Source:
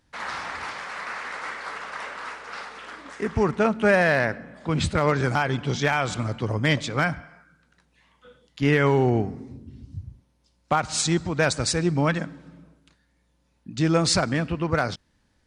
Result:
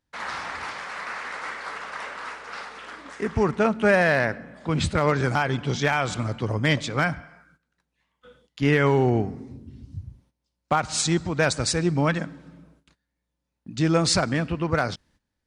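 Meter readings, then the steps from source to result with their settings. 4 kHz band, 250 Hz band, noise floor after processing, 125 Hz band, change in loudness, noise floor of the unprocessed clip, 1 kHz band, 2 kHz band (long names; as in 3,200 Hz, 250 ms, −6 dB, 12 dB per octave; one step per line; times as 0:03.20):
0.0 dB, 0.0 dB, −81 dBFS, 0.0 dB, 0.0 dB, −67 dBFS, 0.0 dB, 0.0 dB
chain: noise gate −58 dBFS, range −14 dB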